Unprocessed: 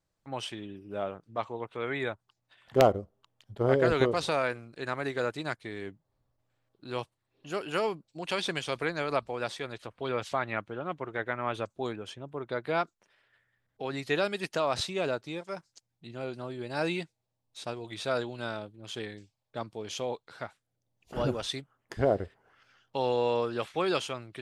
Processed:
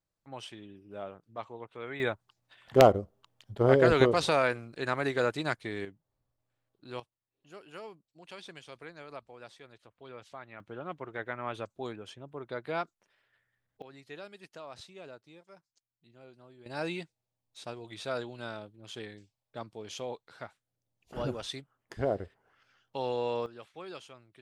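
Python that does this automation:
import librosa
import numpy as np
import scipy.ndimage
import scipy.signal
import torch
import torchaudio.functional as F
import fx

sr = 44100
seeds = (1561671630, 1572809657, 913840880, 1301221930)

y = fx.gain(x, sr, db=fx.steps((0.0, -7.0), (2.0, 2.5), (5.85, -5.5), (7.0, -15.5), (10.6, -4.5), (13.82, -17.0), (16.66, -4.5), (23.46, -15.5)))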